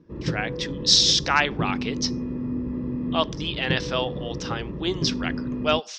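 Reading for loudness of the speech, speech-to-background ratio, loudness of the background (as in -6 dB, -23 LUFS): -24.0 LUFS, 6.5 dB, -30.5 LUFS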